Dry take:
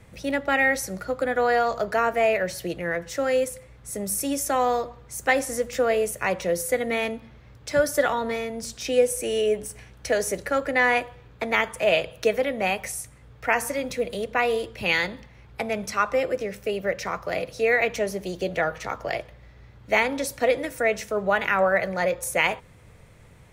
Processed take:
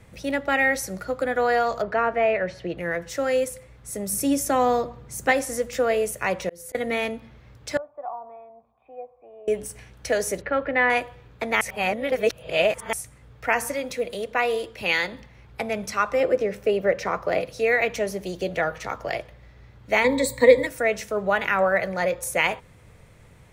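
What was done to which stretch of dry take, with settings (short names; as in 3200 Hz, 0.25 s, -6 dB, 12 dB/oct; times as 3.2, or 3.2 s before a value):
1.82–2.78 LPF 2800 Hz
4.13–5.32 bell 180 Hz +7.5 dB 2.2 oct
5.92–6.75 auto swell 0.461 s
7.77–9.48 vocal tract filter a
10.41–10.9 LPF 3200 Hz 24 dB/oct
11.61–12.93 reverse
13.75–15.12 tone controls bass -6 dB, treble 0 dB
16.2–17.41 EQ curve 110 Hz 0 dB, 440 Hz +6 dB, 12000 Hz -5 dB
20.04–20.67 ripple EQ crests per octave 1, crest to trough 18 dB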